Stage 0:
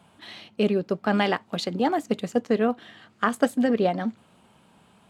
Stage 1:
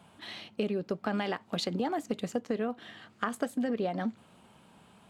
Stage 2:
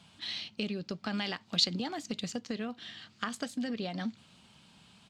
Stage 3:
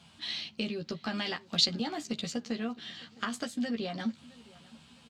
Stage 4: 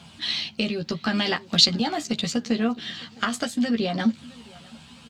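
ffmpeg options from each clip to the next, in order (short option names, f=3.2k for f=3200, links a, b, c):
-filter_complex "[0:a]asplit=2[a][b];[b]alimiter=limit=-18.5dB:level=0:latency=1,volume=-3dB[c];[a][c]amix=inputs=2:normalize=0,acompressor=threshold=-22dB:ratio=6,volume=-5.5dB"
-af "firequalizer=gain_entry='entry(140,0);entry(420,-9);entry(2500,3);entry(4600,11);entry(11000,-6)':delay=0.05:min_phase=1"
-filter_complex "[0:a]asplit=2[a][b];[b]adelay=13,volume=-4dB[c];[a][c]amix=inputs=2:normalize=0,asplit=2[d][e];[e]adelay=662,lowpass=f=4.2k:p=1,volume=-22dB,asplit=2[f][g];[g]adelay=662,lowpass=f=4.2k:p=1,volume=0.38,asplit=2[h][i];[i]adelay=662,lowpass=f=4.2k:p=1,volume=0.38[j];[d][f][h][j]amix=inputs=4:normalize=0"
-af "aphaser=in_gain=1:out_gain=1:delay=1.6:decay=0.24:speed=0.75:type=triangular,volume=9dB"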